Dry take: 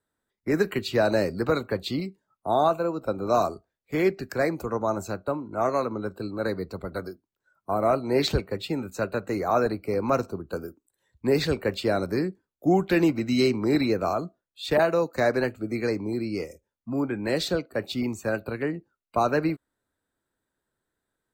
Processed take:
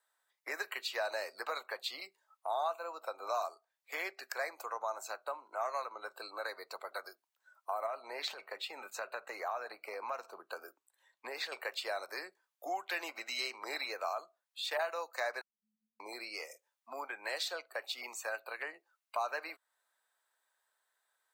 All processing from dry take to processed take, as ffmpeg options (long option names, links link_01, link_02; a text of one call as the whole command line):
ffmpeg -i in.wav -filter_complex "[0:a]asettb=1/sr,asplit=3[link_01][link_02][link_03];[link_01]atrim=end=7.864[link_04];[link_02]atrim=start=7.86:end=11.52,asetpts=PTS-STARTPTS,afade=type=in:duration=0.004:curve=qsin,afade=type=out:start_time=3.656:duration=0.004:curve=qsin,bass=frequency=250:gain=7,treble=frequency=4000:gain=-6,acompressor=threshold=-24dB:ratio=3:attack=3.2:release=140:knee=1:detection=peak[link_05];[link_03]atrim=start=11.516[link_06];[link_04][link_05]acrossfade=duration=0.004:curve1=hsin:curve2=qsin[link_07];[link_07][link_06]acrossfade=duration=0.004:curve1=qsin:curve2=hsin,asettb=1/sr,asplit=3[link_08][link_09][link_10];[link_08]atrim=end=15.414[link_11];[link_09]atrim=start=15.41:end=16,asetpts=PTS-STARTPTS,afade=type=in:duration=0.004:curve=qsin,afade=type=out:start_time=0.586:duration=0.004:curve=qsin,acompressor=threshold=-38dB:ratio=6:attack=3.2:release=140:knee=1:detection=peak,asuperpass=centerf=190:order=20:qfactor=3.2[link_12];[link_10]atrim=start=15.996[link_13];[link_11][link_12]acrossfade=duration=0.004:curve1=hsin:curve2=qsin[link_14];[link_14][link_13]acrossfade=duration=0.004:curve1=qsin:curve2=hsin,highpass=frequency=710:width=0.5412,highpass=frequency=710:width=1.3066,bandreject=frequency=1400:width=19,acompressor=threshold=-48dB:ratio=2,volume=4.5dB" out.wav